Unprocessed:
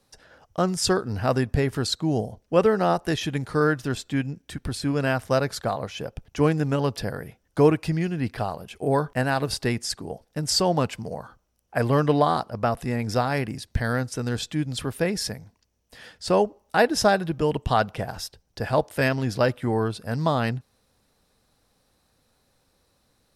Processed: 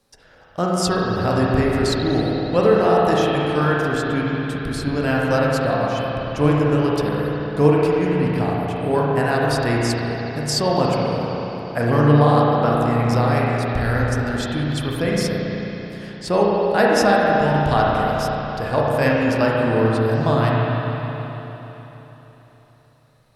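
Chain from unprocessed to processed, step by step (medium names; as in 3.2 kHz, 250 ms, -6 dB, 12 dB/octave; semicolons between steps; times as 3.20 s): spring tank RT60 3.8 s, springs 34/54 ms, chirp 40 ms, DRR -4.5 dB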